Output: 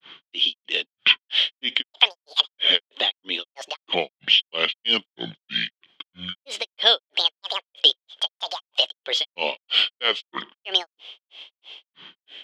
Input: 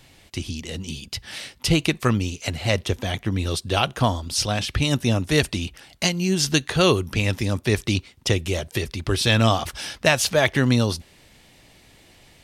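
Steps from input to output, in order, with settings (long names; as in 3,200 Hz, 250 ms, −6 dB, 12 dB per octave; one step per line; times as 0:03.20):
downward compressor 6 to 1, threshold −21 dBFS, peak gain reduction 9 dB
high-pass filter 350 Hz 24 dB per octave
granular cloud 224 ms, grains 3.1 per second, pitch spread up and down by 12 semitones
low-pass with resonance 3,200 Hz, resonance Q 16
level +4 dB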